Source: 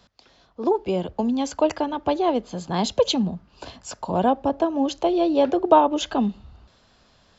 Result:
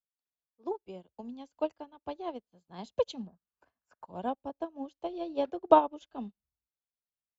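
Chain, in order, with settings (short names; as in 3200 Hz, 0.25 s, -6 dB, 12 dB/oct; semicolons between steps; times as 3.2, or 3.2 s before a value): 3.27–4.07 EQ curve 160 Hz 0 dB, 890 Hz +6 dB, 1600 Hz +13 dB, 3800 Hz -11 dB, 5400 Hz -4 dB; upward expander 2.5:1, over -41 dBFS; gain -3.5 dB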